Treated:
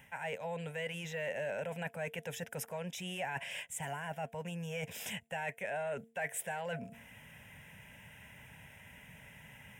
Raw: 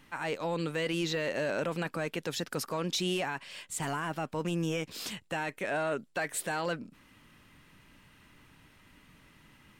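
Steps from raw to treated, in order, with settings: HPF 76 Hz; de-hum 227.9 Hz, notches 3; reverse; compressor 5:1, threshold -42 dBFS, peak gain reduction 12.5 dB; reverse; fixed phaser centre 1200 Hz, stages 6; gain +8 dB

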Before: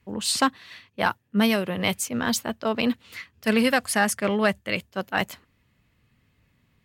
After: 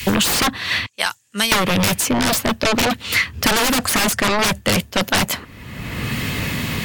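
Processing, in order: 0.86–1.52 band-pass 7400 Hz, Q 3.6; sine folder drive 20 dB, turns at -7 dBFS; three-band squash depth 100%; gain -6.5 dB

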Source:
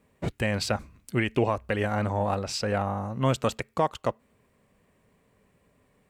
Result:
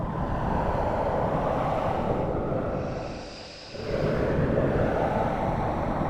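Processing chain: LPF 1300 Hz 12 dB/oct; compressor 10:1, threshold -29 dBFS, peak gain reduction 11.5 dB; overloaded stage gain 30.5 dB; Paulstretch 7.3×, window 0.10 s, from 2.09; whisperiser; narrowing echo 0.221 s, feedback 68%, band-pass 500 Hz, level -9 dB; non-linear reverb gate 0.44 s flat, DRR 0 dB; gain +6.5 dB

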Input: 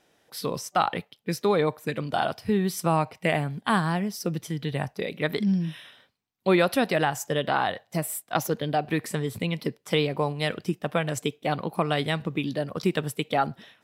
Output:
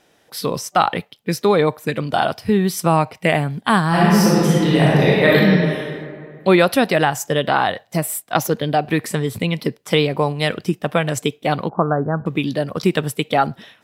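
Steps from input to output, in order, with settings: 3.88–5.35 reverb throw, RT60 2.2 s, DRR -8 dB; 11.69–12.26 steep low-pass 1600 Hz 96 dB/oct; gain +7.5 dB

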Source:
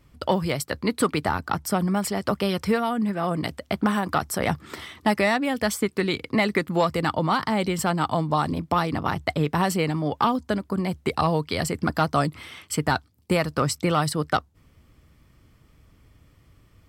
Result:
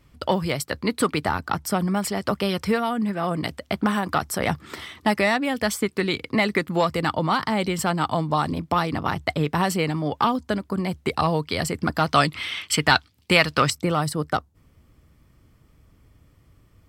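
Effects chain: bell 3000 Hz +2 dB 2.3 oct, from 12.06 s +13.5 dB, from 13.7 s -3.5 dB

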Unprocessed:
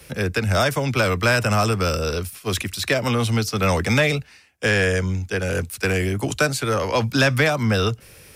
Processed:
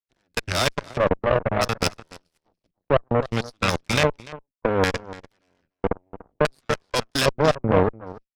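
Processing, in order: level quantiser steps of 20 dB; LFO low-pass square 0.62 Hz 600–4600 Hz; outdoor echo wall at 50 m, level -8 dB; added harmonics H 2 -6 dB, 3 -23 dB, 7 -19 dB, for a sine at -7 dBFS

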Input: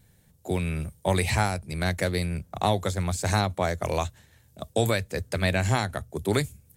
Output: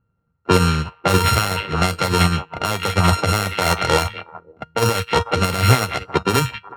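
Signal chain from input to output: sample sorter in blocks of 32 samples; delay with a stepping band-pass 0.183 s, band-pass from 2500 Hz, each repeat -1.4 oct, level -4 dB; low-pass opened by the level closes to 1100 Hz, open at -21 dBFS; HPF 61 Hz 6 dB/oct; resonator 470 Hz, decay 0.3 s, harmonics all, mix 80%; small resonant body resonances 2100/3200 Hz, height 9 dB; maximiser +30 dB; upward expander 2.5:1, over -25 dBFS

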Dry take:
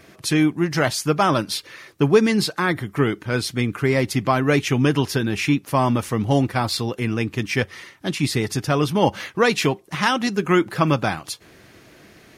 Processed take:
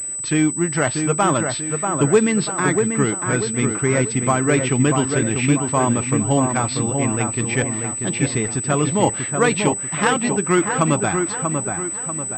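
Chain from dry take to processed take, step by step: dark delay 0.639 s, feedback 44%, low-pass 2100 Hz, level -5 dB; pulse-width modulation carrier 8000 Hz

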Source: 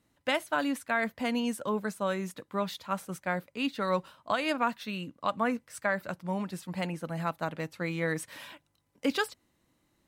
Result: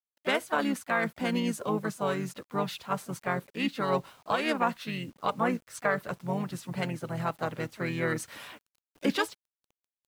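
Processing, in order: harmoniser -5 st -5 dB, +3 st -16 dB; requantised 10-bit, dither none

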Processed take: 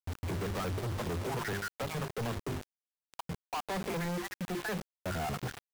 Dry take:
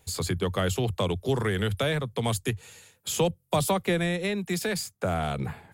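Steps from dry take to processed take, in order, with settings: random spectral dropouts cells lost 42%; LPF 1700 Hz 24 dB/oct; notches 50/100/150/200/250/300/350/400 Hz; in parallel at -4.5 dB: soft clip -28.5 dBFS, distortion -9 dB; on the sum: companded quantiser 2-bit; gain -8.5 dB

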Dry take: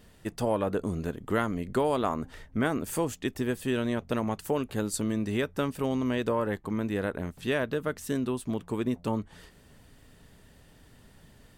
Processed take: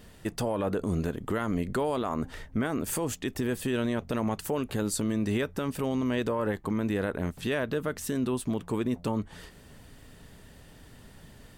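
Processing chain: limiter -24.5 dBFS, peak gain reduction 10 dB; gain +4.5 dB

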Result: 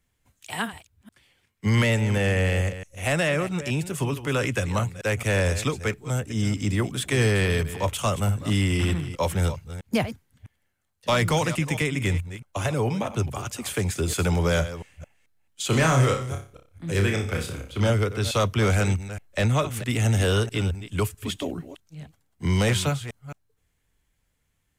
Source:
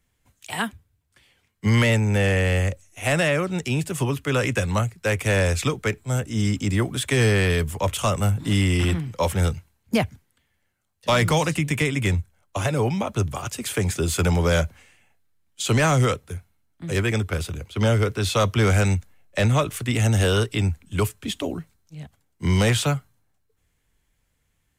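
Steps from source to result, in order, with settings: reverse delay 0.218 s, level -12.5 dB; 15.67–17.9 flutter echo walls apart 5.2 m, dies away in 0.35 s; gain -2.5 dB

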